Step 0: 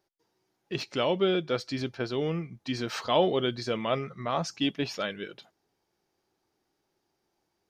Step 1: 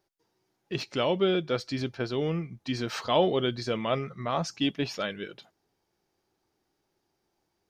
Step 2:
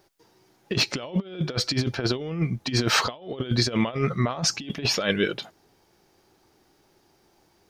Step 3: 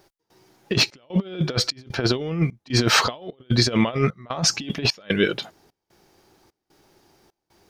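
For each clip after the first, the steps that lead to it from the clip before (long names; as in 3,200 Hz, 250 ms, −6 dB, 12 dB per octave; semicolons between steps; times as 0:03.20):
low-shelf EQ 120 Hz +4.5 dB
compressor whose output falls as the input rises −34 dBFS, ratio −0.5; level +9 dB
gate pattern "x..xxxxx" 150 BPM −24 dB; level +4 dB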